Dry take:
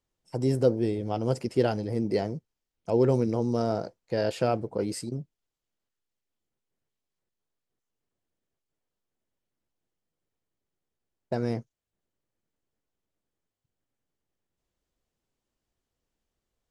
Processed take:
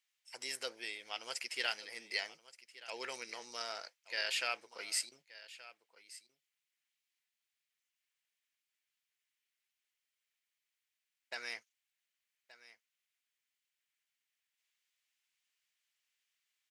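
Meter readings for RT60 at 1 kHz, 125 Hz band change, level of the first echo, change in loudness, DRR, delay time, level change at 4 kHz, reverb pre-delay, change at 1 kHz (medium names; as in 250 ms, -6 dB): no reverb, under -40 dB, -17.5 dB, -11.5 dB, no reverb, 1175 ms, +5.0 dB, no reverb, -11.5 dB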